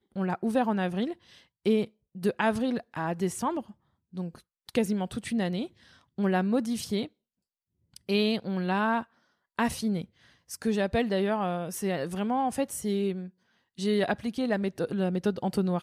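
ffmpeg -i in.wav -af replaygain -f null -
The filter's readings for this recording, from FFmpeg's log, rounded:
track_gain = +9.6 dB
track_peak = 0.172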